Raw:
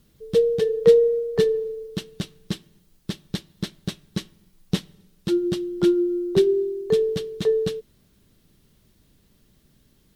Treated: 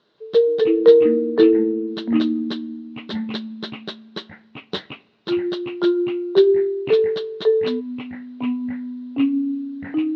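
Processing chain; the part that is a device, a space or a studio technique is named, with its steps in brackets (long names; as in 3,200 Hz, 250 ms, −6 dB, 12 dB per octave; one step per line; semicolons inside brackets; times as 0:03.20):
phone earpiece (loudspeaker in its box 380–4,200 Hz, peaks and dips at 400 Hz +6 dB, 630 Hz +6 dB, 1,000 Hz +8 dB, 1,500 Hz +7 dB, 2,400 Hz −6 dB, 3,900 Hz +7 dB)
0:01.26–0:01.86: low-pass filter 5,000 Hz → 2,500 Hz 12 dB per octave
delay with pitch and tempo change per echo 179 ms, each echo −6 semitones, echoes 2, each echo −6 dB
level +1 dB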